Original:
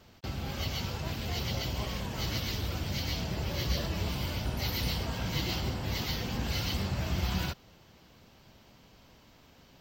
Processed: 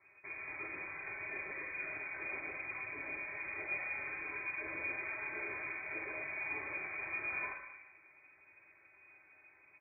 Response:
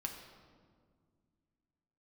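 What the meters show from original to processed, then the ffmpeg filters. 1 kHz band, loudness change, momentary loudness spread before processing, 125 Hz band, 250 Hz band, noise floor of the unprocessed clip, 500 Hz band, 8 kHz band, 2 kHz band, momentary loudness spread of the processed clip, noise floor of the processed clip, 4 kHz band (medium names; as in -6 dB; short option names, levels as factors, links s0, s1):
-7.5 dB, -6.5 dB, 4 LU, -30.5 dB, -18.0 dB, -59 dBFS, -9.5 dB, under -35 dB, +3.5 dB, 9 LU, -65 dBFS, under -40 dB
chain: -filter_complex "[0:a]equalizer=f=110:w=0.45:g=-12.5,aecho=1:1:4.2:0.86,flanger=delay=8.5:depth=6.5:regen=-76:speed=1.2:shape=triangular[s0];[1:a]atrim=start_sample=2205,asetrate=83790,aresample=44100[s1];[s0][s1]afir=irnorm=-1:irlink=0,lowpass=f=2100:t=q:w=0.5098,lowpass=f=2100:t=q:w=0.6013,lowpass=f=2100:t=q:w=0.9,lowpass=f=2100:t=q:w=2.563,afreqshift=-2500,volume=2"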